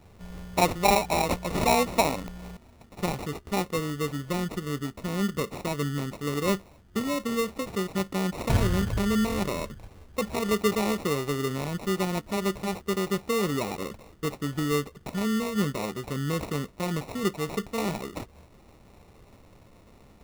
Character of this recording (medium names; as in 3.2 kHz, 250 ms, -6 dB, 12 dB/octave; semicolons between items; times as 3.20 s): aliases and images of a low sample rate 1.6 kHz, jitter 0%